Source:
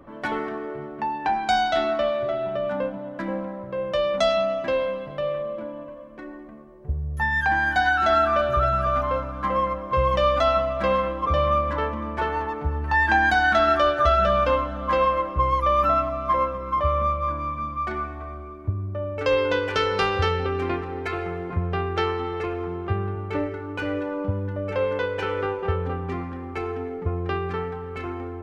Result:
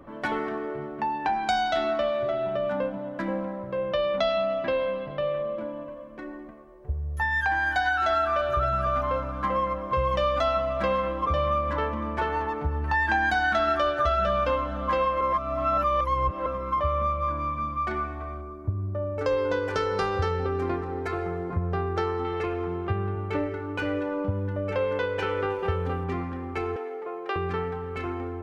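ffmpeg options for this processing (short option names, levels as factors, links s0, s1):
-filter_complex "[0:a]asettb=1/sr,asplit=3[s0][s1][s2];[s0]atrim=end=3.774[s3];[s1]atrim=start=3.77:end=5.58,asetpts=PTS-STARTPTS,afade=t=in:d=0.004:c=qsin,afade=t=out:st=1.806:d=0.004:c=qsin,lowpass=f=4700:w=0.5412,lowpass=f=4700:w=1.3066[s4];[s2]atrim=start=5.576[s5];[s3][s4]acrossfade=d=0.004:c1=hsin:c2=qsin[s6];[s6][s5]acrossfade=d=0.004:c1=qsin:c2=hsin,asettb=1/sr,asplit=3[s7][s8][s9];[s7]atrim=end=6.514[s10];[s8]atrim=start=6.51:end=8.57,asetpts=PTS-STARTPTS,afade=t=in:d=0.004:c=qsin,afade=t=out:st=2.056:d=0.004:c=qsin,equalizer=f=180:w=1.4:g=-12.5[s11];[s9]atrim=start=8.566[s12];[s10][s11]acrossfade=d=0.004:c1=hsin:c2=qsin[s13];[s13][s12]acrossfade=d=0.004:c1=qsin:c2=hsin,asettb=1/sr,asplit=3[s14][s15][s16];[s14]atrim=end=18.414[s17];[s15]atrim=start=18.41:end=22.25,asetpts=PTS-STARTPTS,afade=t=in:d=0.004:c=qsin,afade=t=out:st=3.836:d=0.004:c=qsin,equalizer=f=2800:w=1.3:g=-10[s18];[s16]atrim=start=22.246[s19];[s17][s18]acrossfade=d=0.004:c1=hsin:c2=qsin[s20];[s20][s19]acrossfade=d=0.004:c1=qsin:c2=hsin,asettb=1/sr,asplit=3[s21][s22][s23];[s21]atrim=end=25.504[s24];[s22]atrim=start=25.5:end=26.04,asetpts=PTS-STARTPTS,afade=t=in:d=0.004:c=qsin,afade=t=out:st=0.536:d=0.004:c=qsin,highshelf=f=4500:g=9[s25];[s23]atrim=start=26.036[s26];[s24][s25]acrossfade=d=0.004:c1=hsin:c2=qsin[s27];[s27][s26]acrossfade=d=0.004:c1=qsin:c2=hsin,asettb=1/sr,asplit=3[s28][s29][s30];[s28]atrim=end=26.764[s31];[s29]atrim=start=26.76:end=27.36,asetpts=PTS-STARTPTS,afade=t=in:d=0.004:c=qsin,afade=t=out:st=0.596:d=0.004:c=qsin,highpass=f=410:w=0.5412,highpass=f=410:w=1.3066[s32];[s30]atrim=start=27.356[s33];[s31][s32]acrossfade=d=0.004:c1=hsin:c2=qsin[s34];[s34][s33]acrossfade=d=0.004:c1=qsin:c2=hsin,asplit=3[s35][s36][s37];[s35]atrim=end=15.212[s38];[s36]atrim=start=15.208:end=16.462,asetpts=PTS-STARTPTS,areverse[s39];[s37]atrim=start=16.458[s40];[s38][s39]acrossfade=d=0.004:c1=hsin:c2=hsin[s41];[s41][s40]acrossfade=d=0.004:c1=hsin:c2=hsin,acompressor=threshold=0.0631:ratio=2"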